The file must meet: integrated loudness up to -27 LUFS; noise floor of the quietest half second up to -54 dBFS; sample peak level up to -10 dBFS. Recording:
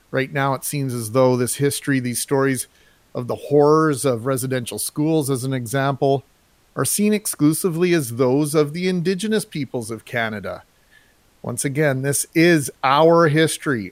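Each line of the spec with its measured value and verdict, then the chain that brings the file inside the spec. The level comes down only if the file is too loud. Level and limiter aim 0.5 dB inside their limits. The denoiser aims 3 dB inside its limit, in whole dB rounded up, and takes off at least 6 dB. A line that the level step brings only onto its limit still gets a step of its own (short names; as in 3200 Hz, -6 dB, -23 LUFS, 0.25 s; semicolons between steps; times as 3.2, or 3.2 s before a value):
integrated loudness -19.5 LUFS: fail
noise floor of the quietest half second -57 dBFS: OK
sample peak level -3.5 dBFS: fail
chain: gain -8 dB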